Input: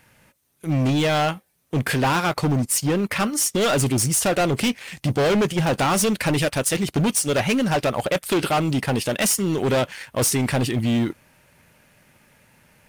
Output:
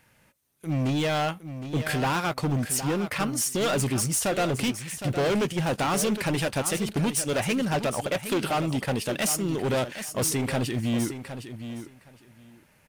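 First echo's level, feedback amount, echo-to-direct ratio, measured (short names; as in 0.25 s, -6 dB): -10.5 dB, 16%, -10.5 dB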